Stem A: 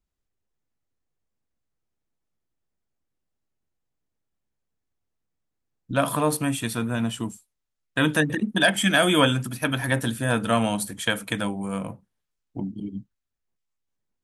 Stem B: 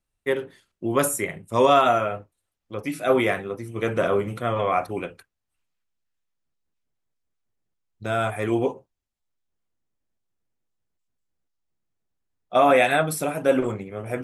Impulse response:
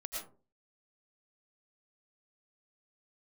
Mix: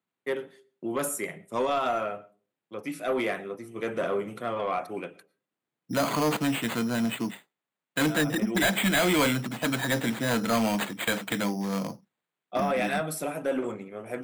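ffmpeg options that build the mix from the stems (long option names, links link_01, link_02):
-filter_complex "[0:a]acrusher=samples=8:mix=1:aa=0.000001,volume=1dB,asplit=2[link_01][link_02];[1:a]agate=range=-33dB:threshold=-44dB:ratio=3:detection=peak,alimiter=limit=-11dB:level=0:latency=1:release=93,volume=-5.5dB,asplit=2[link_03][link_04];[link_04]volume=-19.5dB[link_05];[link_02]apad=whole_len=627844[link_06];[link_03][link_06]sidechaincompress=threshold=-25dB:ratio=8:attack=32:release=559[link_07];[2:a]atrim=start_sample=2205[link_08];[link_05][link_08]afir=irnorm=-1:irlink=0[link_09];[link_01][link_07][link_09]amix=inputs=3:normalize=0,highpass=frequency=150:width=0.5412,highpass=frequency=150:width=1.3066,asoftclip=type=tanh:threshold=-19dB"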